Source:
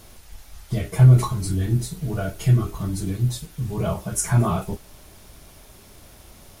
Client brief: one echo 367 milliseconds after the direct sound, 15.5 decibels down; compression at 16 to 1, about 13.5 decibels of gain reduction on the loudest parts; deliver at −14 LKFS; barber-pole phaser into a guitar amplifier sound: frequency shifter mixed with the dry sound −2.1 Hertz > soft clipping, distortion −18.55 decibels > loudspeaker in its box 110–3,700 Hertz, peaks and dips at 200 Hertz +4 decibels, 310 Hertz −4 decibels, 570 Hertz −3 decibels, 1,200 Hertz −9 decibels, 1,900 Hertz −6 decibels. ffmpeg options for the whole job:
ffmpeg -i in.wav -filter_complex "[0:a]acompressor=threshold=-21dB:ratio=16,aecho=1:1:367:0.168,asplit=2[link_01][link_02];[link_02]afreqshift=-2.1[link_03];[link_01][link_03]amix=inputs=2:normalize=1,asoftclip=threshold=-22dB,highpass=110,equalizer=frequency=200:width_type=q:width=4:gain=4,equalizer=frequency=310:width_type=q:width=4:gain=-4,equalizer=frequency=570:width_type=q:width=4:gain=-3,equalizer=frequency=1200:width_type=q:width=4:gain=-9,equalizer=frequency=1900:width_type=q:width=4:gain=-6,lowpass=frequency=3700:width=0.5412,lowpass=frequency=3700:width=1.3066,volume=20.5dB" out.wav

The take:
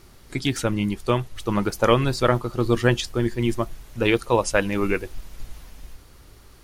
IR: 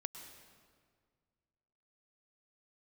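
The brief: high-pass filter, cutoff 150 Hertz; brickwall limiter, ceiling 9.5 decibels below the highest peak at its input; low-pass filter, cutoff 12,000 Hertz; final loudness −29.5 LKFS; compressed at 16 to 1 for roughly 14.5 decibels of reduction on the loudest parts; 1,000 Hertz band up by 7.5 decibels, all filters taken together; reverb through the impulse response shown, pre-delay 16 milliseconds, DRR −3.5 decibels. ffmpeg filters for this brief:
-filter_complex "[0:a]highpass=150,lowpass=12000,equalizer=frequency=1000:width_type=o:gain=9,acompressor=threshold=-24dB:ratio=16,alimiter=limit=-19.5dB:level=0:latency=1,asplit=2[link_01][link_02];[1:a]atrim=start_sample=2205,adelay=16[link_03];[link_02][link_03]afir=irnorm=-1:irlink=0,volume=6dB[link_04];[link_01][link_04]amix=inputs=2:normalize=0,volume=-1dB"

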